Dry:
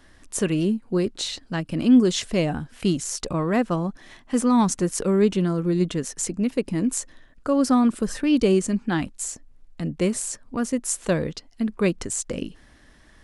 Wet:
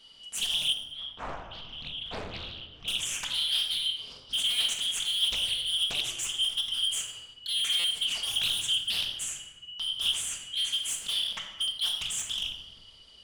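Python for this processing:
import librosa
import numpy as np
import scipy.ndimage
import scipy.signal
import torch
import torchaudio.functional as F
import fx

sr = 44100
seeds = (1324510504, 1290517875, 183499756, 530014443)

y = fx.band_shuffle(x, sr, order='3412')
y = fx.low_shelf(y, sr, hz=91.0, db=7.5)
y = np.clip(y, -10.0 ** (-24.5 / 20.0), 10.0 ** (-24.5 / 20.0))
y = fx.spacing_loss(y, sr, db_at_10k=38, at=(0.73, 2.88))
y = fx.room_shoebox(y, sr, seeds[0], volume_m3=810.0, walls='mixed', distance_m=1.6)
y = fx.buffer_glitch(y, sr, at_s=(7.79,), block=256, repeats=8)
y = fx.doppler_dist(y, sr, depth_ms=0.78)
y = y * librosa.db_to_amplitude(-4.5)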